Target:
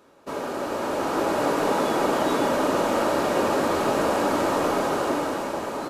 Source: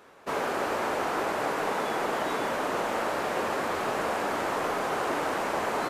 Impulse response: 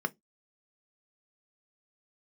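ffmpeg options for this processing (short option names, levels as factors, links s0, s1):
-filter_complex "[0:a]dynaudnorm=f=230:g=9:m=2.51,asplit=2[s0][s1];[1:a]atrim=start_sample=2205,asetrate=74970,aresample=44100[s2];[s1][s2]afir=irnorm=-1:irlink=0,volume=0.447[s3];[s0][s3]amix=inputs=2:normalize=0"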